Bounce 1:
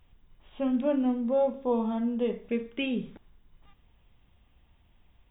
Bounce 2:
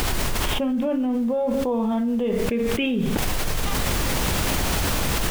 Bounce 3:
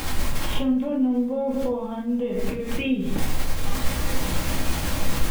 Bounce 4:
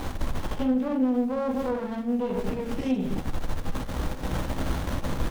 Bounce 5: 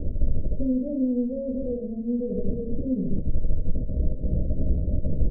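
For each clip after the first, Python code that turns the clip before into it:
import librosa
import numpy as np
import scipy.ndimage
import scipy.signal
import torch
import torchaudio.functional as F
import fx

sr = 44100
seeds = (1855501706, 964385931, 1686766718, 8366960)

y1 = fx.dmg_noise_colour(x, sr, seeds[0], colour='pink', level_db=-59.0)
y1 = fx.env_flatten(y1, sr, amount_pct=100)
y2 = fx.room_shoebox(y1, sr, seeds[1], volume_m3=250.0, walls='furnished', distance_m=2.2)
y2 = F.gain(torch.from_numpy(y2), -8.5).numpy()
y3 = fx.diode_clip(y2, sr, knee_db=-16.0)
y3 = fx.running_max(y3, sr, window=17)
y4 = scipy.signal.sosfilt(scipy.signal.cheby1(6, 3, 630.0, 'lowpass', fs=sr, output='sos'), y3)
y4 = fx.low_shelf(y4, sr, hz=110.0, db=11.0)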